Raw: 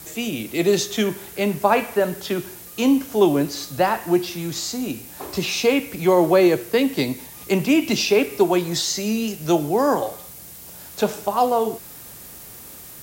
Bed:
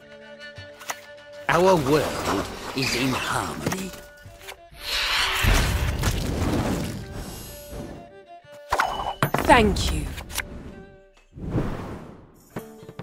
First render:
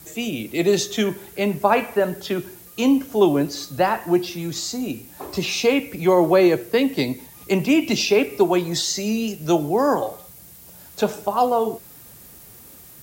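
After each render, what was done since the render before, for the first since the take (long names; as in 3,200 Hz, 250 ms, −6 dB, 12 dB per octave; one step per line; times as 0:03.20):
broadband denoise 6 dB, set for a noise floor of −40 dBFS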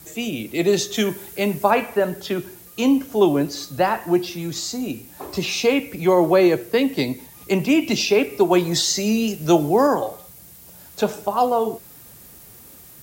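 0:00.94–0:01.71: high-shelf EQ 4,600 Hz +6 dB
0:08.51–0:09.87: clip gain +3 dB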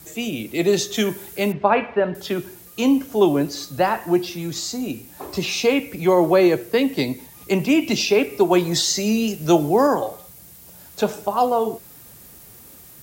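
0:01.52–0:02.15: low-pass filter 3,400 Hz 24 dB per octave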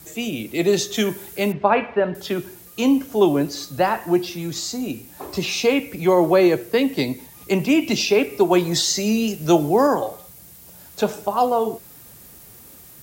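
no processing that can be heard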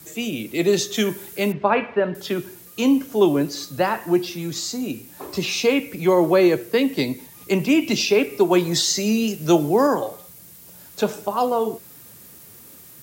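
high-pass filter 97 Hz
parametric band 740 Hz −4 dB 0.49 octaves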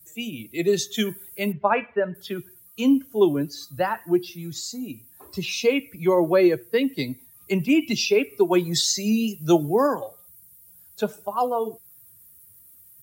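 spectral dynamics exaggerated over time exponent 1.5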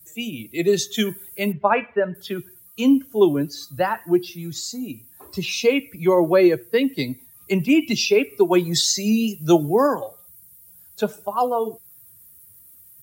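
level +2.5 dB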